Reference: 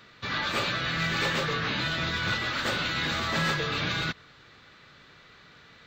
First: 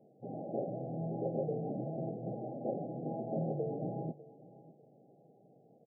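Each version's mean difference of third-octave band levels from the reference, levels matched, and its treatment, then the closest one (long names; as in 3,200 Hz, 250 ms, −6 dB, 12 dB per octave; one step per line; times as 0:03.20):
19.0 dB: brick-wall band-pass 110–820 Hz
low-shelf EQ 160 Hz −10.5 dB
on a send: repeating echo 599 ms, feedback 25%, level −19.5 dB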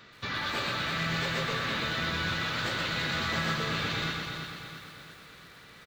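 5.5 dB: downward compressor 3 to 1, threshold −32 dBFS, peak gain reduction 7 dB
on a send: repeating echo 335 ms, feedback 51%, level −7 dB
on the sum: feedback echo at a low word length 122 ms, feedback 55%, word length 9 bits, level −4 dB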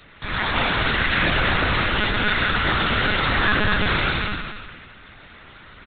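7.5 dB: repeating echo 233 ms, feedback 21%, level −3 dB
spring reverb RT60 1.4 s, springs 34/58 ms, chirp 75 ms, DRR 0 dB
one-pitch LPC vocoder at 8 kHz 210 Hz
level +4.5 dB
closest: second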